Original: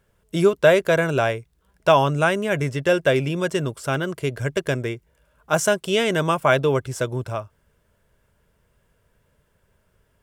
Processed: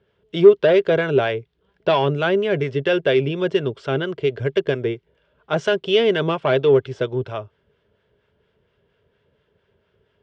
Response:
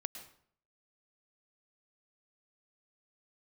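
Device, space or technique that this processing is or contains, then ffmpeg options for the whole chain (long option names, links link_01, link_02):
guitar amplifier with harmonic tremolo: -filter_complex "[0:a]acrossover=split=730[link_01][link_02];[link_01]aeval=exprs='val(0)*(1-0.5/2+0.5/2*cos(2*PI*4.3*n/s))':channel_layout=same[link_03];[link_02]aeval=exprs='val(0)*(1-0.5/2-0.5/2*cos(2*PI*4.3*n/s))':channel_layout=same[link_04];[link_03][link_04]amix=inputs=2:normalize=0,asoftclip=type=tanh:threshold=-13dB,highpass=84,equalizer=frequency=410:width_type=q:width=4:gain=10,equalizer=frequency=1100:width_type=q:width=4:gain=-3,equalizer=frequency=3200:width_type=q:width=4:gain=6,lowpass=frequency=4300:width=0.5412,lowpass=frequency=4300:width=1.3066,volume=2dB"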